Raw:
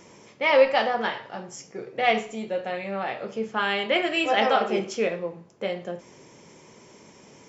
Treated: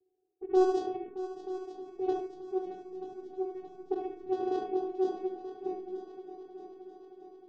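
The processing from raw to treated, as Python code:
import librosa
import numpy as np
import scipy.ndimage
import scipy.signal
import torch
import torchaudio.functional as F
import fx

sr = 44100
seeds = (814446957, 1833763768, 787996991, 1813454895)

p1 = fx.dead_time(x, sr, dead_ms=0.27)
p2 = fx.vocoder(p1, sr, bands=4, carrier='saw', carrier_hz=371.0)
p3 = fx.peak_eq(p2, sr, hz=1300.0, db=-13.0, octaves=1.4)
p4 = fx.leveller(p3, sr, passes=1)
p5 = fx.bass_treble(p4, sr, bass_db=3, treble_db=-4)
p6 = p5 + 10.0 ** (-4.5 / 20.0) * np.pad(p5, (int(74 * sr / 1000.0), 0))[:len(p5)]
p7 = fx.env_phaser(p6, sr, low_hz=230.0, high_hz=2300.0, full_db=-22.5)
p8 = fx.env_lowpass(p7, sr, base_hz=300.0, full_db=-17.0)
p9 = fx.doubler(p8, sr, ms=45.0, db=-10.5)
p10 = p9 + fx.echo_heads(p9, sr, ms=311, heads='second and third', feedback_pct=61, wet_db=-13.5, dry=0)
y = p10 * 10.0 ** (-4.5 / 20.0)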